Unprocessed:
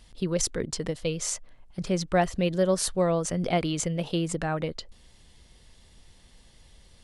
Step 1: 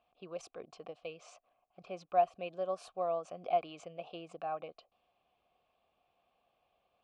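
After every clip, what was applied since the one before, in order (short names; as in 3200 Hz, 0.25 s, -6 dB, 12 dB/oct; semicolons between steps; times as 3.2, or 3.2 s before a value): low-pass opened by the level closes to 2600 Hz, open at -22 dBFS; vowel filter a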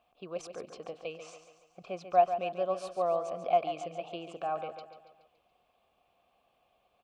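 feedback echo 0.141 s, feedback 50%, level -10 dB; gain +4.5 dB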